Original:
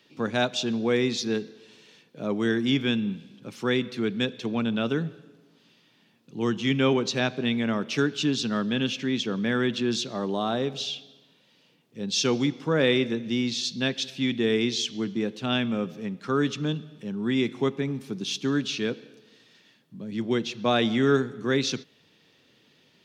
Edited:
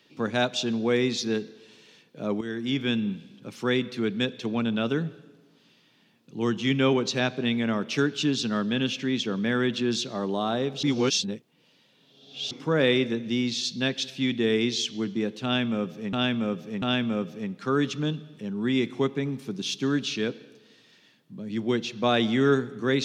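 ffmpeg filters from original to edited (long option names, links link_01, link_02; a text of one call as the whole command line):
ffmpeg -i in.wav -filter_complex "[0:a]asplit=6[link_01][link_02][link_03][link_04][link_05][link_06];[link_01]atrim=end=2.41,asetpts=PTS-STARTPTS,afade=type=out:start_time=2.406:duration=0.004:curve=hsin:silence=0.251189[link_07];[link_02]atrim=start=2.41:end=10.832,asetpts=PTS-STARTPTS,afade=type=in:duration=0.57:silence=0.251189[link_08];[link_03]atrim=start=10.828:end=12.512,asetpts=PTS-STARTPTS,areverse[link_09];[link_04]atrim=start=12.508:end=16.132[link_10];[link_05]atrim=start=15.438:end=16.132[link_11];[link_06]atrim=start=15.438[link_12];[link_07][link_08]concat=n=2:v=0:a=1[link_13];[link_13][link_09]acrossfade=duration=0.004:curve1=hsin:curve2=hsin[link_14];[link_14][link_10]acrossfade=duration=0.004:curve1=hsin:curve2=hsin[link_15];[link_15][link_11]acrossfade=duration=0.004:curve1=hsin:curve2=hsin[link_16];[link_16][link_12]acrossfade=duration=0.004:curve1=hsin:curve2=hsin" out.wav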